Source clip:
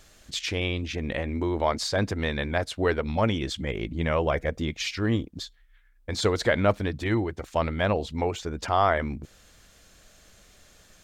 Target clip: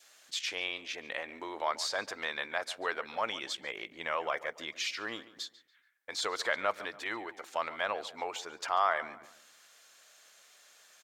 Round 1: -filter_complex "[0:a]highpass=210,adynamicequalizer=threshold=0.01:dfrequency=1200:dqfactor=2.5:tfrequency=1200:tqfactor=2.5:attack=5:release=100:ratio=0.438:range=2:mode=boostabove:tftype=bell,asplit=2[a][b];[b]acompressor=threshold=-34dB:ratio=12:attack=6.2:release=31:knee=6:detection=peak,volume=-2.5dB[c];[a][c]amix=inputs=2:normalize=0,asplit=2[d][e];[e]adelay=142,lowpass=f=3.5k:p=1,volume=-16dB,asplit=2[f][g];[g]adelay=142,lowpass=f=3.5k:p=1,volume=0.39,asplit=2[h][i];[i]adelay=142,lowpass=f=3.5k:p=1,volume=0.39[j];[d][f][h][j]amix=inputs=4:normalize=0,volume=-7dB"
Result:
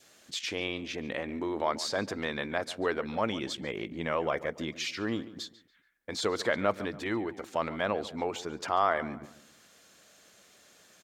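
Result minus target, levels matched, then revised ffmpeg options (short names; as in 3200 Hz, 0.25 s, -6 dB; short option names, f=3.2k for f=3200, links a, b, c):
250 Hz band +11.5 dB
-filter_complex "[0:a]highpass=770,adynamicequalizer=threshold=0.01:dfrequency=1200:dqfactor=2.5:tfrequency=1200:tqfactor=2.5:attack=5:release=100:ratio=0.438:range=2:mode=boostabove:tftype=bell,asplit=2[a][b];[b]acompressor=threshold=-34dB:ratio=12:attack=6.2:release=31:knee=6:detection=peak,volume=-2.5dB[c];[a][c]amix=inputs=2:normalize=0,asplit=2[d][e];[e]adelay=142,lowpass=f=3.5k:p=1,volume=-16dB,asplit=2[f][g];[g]adelay=142,lowpass=f=3.5k:p=1,volume=0.39,asplit=2[h][i];[i]adelay=142,lowpass=f=3.5k:p=1,volume=0.39[j];[d][f][h][j]amix=inputs=4:normalize=0,volume=-7dB"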